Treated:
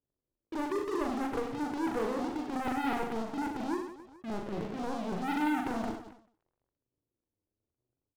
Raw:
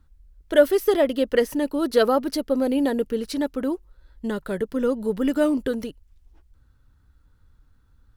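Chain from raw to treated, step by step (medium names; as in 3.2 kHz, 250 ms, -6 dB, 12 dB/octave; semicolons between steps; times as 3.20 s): zero-crossing glitches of -22 dBFS; in parallel at +1.5 dB: compression 12:1, threshold -32 dBFS, peak gain reduction 22.5 dB; on the sum: four-pole ladder low-pass 350 Hz, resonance 45%; flange 0.74 Hz, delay 6.9 ms, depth 3.1 ms, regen +42%; high-pass 160 Hz 12 dB/octave; transient shaper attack -10 dB, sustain +11 dB; waveshaping leveller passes 5; peaking EQ 230 Hz -13 dB 1.2 oct; on a send: reverse bouncing-ball echo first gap 40 ms, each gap 1.4×, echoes 5; on the sum: endings held to a fixed fall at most 110 dB/s; trim -6.5 dB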